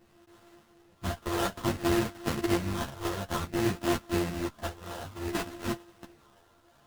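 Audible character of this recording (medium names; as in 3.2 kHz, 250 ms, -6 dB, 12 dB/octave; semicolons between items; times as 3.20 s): a buzz of ramps at a fixed pitch in blocks of 128 samples; phasing stages 8, 0.57 Hz, lowest notch 240–4700 Hz; aliases and images of a low sample rate 2.3 kHz, jitter 20%; a shimmering, thickened sound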